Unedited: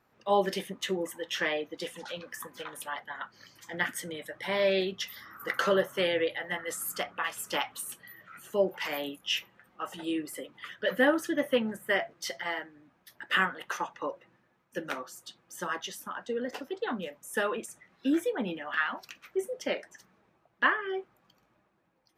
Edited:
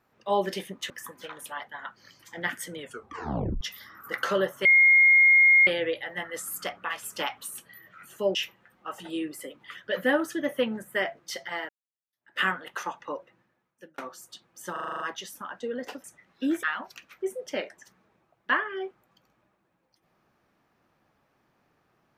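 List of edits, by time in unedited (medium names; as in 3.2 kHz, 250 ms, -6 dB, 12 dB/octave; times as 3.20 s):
0.90–2.26 s: delete
4.14 s: tape stop 0.83 s
6.01 s: add tone 2.14 kHz -14 dBFS 1.02 s
8.69–9.29 s: delete
12.63–13.33 s: fade in exponential
13.92–14.92 s: fade out equal-power
15.66 s: stutter 0.04 s, 8 plays
16.70–17.67 s: delete
18.26–18.76 s: delete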